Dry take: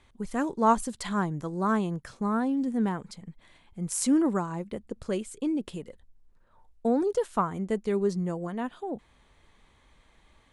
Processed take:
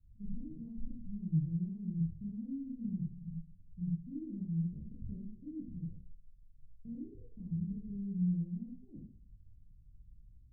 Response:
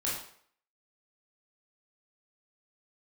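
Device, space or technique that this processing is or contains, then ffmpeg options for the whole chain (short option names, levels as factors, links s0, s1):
club heard from the street: -filter_complex "[0:a]alimiter=limit=0.0794:level=0:latency=1:release=102,lowpass=f=150:w=0.5412,lowpass=f=150:w=1.3066[s0];[1:a]atrim=start_sample=2205[s1];[s0][s1]afir=irnorm=-1:irlink=0"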